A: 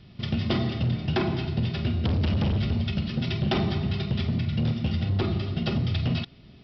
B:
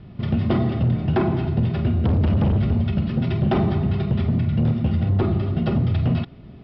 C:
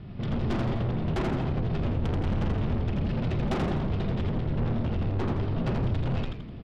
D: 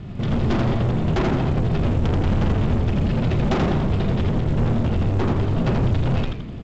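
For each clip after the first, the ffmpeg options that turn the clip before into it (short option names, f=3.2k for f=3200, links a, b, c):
-filter_complex "[0:a]lowpass=1.2k,aemphasis=mode=production:type=75kf,asplit=2[a][b];[b]alimiter=level_in=4.5dB:limit=-24dB:level=0:latency=1,volume=-4.5dB,volume=-2dB[c];[a][c]amix=inputs=2:normalize=0,volume=3.5dB"
-filter_complex "[0:a]asoftclip=type=tanh:threshold=-27dB,asplit=2[a][b];[b]asplit=5[c][d][e][f][g];[c]adelay=83,afreqshift=-110,volume=-3.5dB[h];[d]adelay=166,afreqshift=-220,volume=-11dB[i];[e]adelay=249,afreqshift=-330,volume=-18.6dB[j];[f]adelay=332,afreqshift=-440,volume=-26.1dB[k];[g]adelay=415,afreqshift=-550,volume=-33.6dB[l];[h][i][j][k][l]amix=inputs=5:normalize=0[m];[a][m]amix=inputs=2:normalize=0"
-af "volume=7.5dB" -ar 16000 -c:a pcm_mulaw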